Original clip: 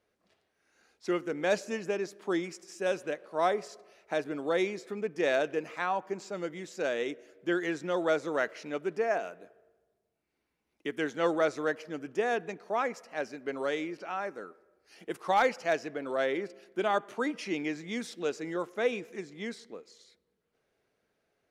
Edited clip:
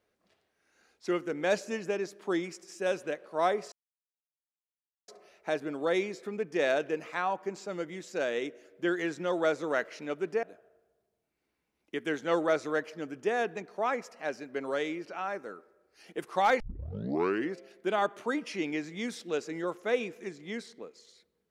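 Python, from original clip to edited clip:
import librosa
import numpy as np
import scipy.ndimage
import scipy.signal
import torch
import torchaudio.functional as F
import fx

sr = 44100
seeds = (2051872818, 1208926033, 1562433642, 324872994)

y = fx.edit(x, sr, fx.insert_silence(at_s=3.72, length_s=1.36),
    fx.cut(start_s=9.07, length_s=0.28),
    fx.tape_start(start_s=15.52, length_s=0.96), tone=tone)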